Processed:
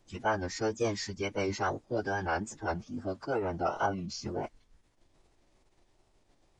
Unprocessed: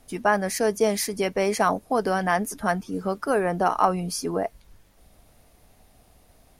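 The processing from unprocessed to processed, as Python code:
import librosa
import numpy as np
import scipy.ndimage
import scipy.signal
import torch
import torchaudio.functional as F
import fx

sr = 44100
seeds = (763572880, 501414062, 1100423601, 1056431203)

y = fx.wow_flutter(x, sr, seeds[0], rate_hz=2.1, depth_cents=110.0)
y = fx.pitch_keep_formants(y, sr, semitones=-12.0)
y = F.gain(torch.from_numpy(y), -8.0).numpy()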